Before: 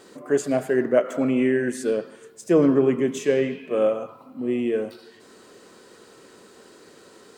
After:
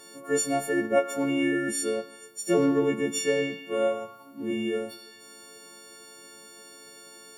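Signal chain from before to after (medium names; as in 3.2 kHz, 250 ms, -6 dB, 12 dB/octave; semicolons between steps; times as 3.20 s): partials quantised in pitch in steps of 4 st; trim -5 dB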